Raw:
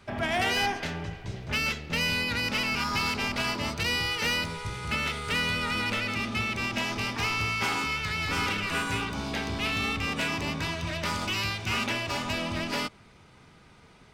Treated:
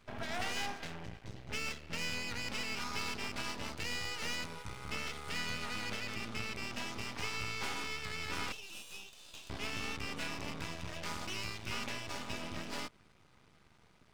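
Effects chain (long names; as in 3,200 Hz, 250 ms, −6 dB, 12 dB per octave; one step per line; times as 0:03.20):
0:08.52–0:09.50: Chebyshev high-pass with heavy ripple 2,500 Hz, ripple 3 dB
half-wave rectification
level −6.5 dB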